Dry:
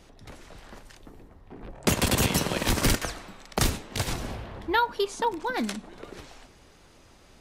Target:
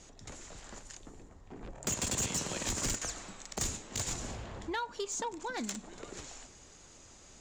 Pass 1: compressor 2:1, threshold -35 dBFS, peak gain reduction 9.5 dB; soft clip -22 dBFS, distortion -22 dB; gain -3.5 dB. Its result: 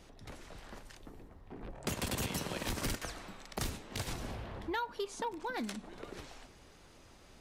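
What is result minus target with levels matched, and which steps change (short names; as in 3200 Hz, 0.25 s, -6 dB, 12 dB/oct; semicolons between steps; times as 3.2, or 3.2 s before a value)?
8000 Hz band -7.0 dB
add after compressor: synth low-pass 7100 Hz, resonance Q 8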